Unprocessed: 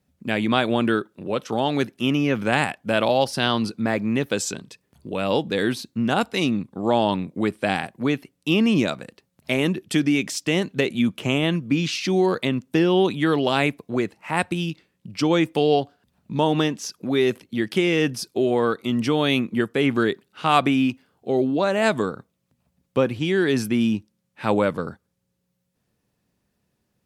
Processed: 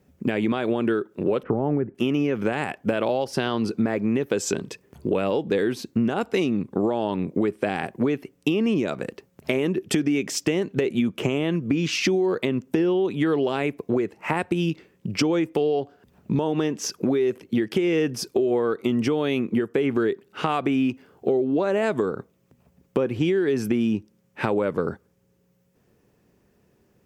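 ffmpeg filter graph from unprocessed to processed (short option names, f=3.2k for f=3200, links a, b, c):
-filter_complex "[0:a]asettb=1/sr,asplit=3[a][b][c];[a]atrim=end=1.434[d];[b]atrim=start=1.43:end=1.95,asetpts=PTS-STARTPTS,afade=t=in:d=0.004:c=qsin,afade=t=out:st=0.516:d=0.004:c=qsin,lowpass=f=2k:w=0.5412,lowpass=f=2k:w=1.3066,aemphasis=mode=reproduction:type=riaa[e];[c]atrim=start=1.946[f];[d][e]acrossfade=d=0.004:c1=hsin:c2=qsin[g];[g][f]acrossfade=d=0.004:c1=qsin:c2=hsin,equalizer=f=400:t=o:w=0.67:g=8,equalizer=f=4k:t=o:w=0.67:g=-7,equalizer=f=10k:t=o:w=0.67:g=-7,alimiter=limit=-14dB:level=0:latency=1:release=352,acompressor=threshold=-28dB:ratio=6,volume=8.5dB"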